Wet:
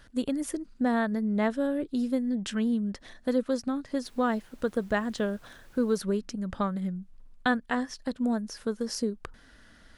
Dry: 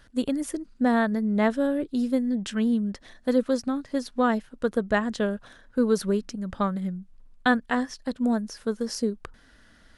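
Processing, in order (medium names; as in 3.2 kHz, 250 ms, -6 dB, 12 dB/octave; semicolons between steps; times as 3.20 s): in parallel at +2 dB: compression, threshold -31 dBFS, peak gain reduction 14.5 dB; 4.03–5.97 s: on the sum: added noise pink -54 dBFS; trim -6.5 dB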